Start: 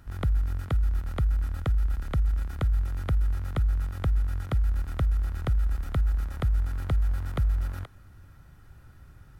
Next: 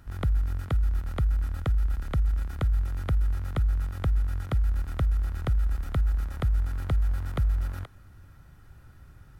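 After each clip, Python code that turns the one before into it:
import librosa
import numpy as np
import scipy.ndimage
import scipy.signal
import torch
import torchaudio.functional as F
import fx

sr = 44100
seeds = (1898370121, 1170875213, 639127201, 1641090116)

y = x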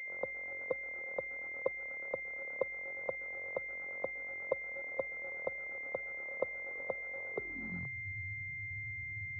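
y = fx.spec_quant(x, sr, step_db=15)
y = fx.filter_sweep_highpass(y, sr, from_hz=530.0, to_hz=100.0, start_s=7.28, end_s=7.99, q=7.6)
y = fx.pwm(y, sr, carrier_hz=2100.0)
y = y * 10.0 ** (-7.5 / 20.0)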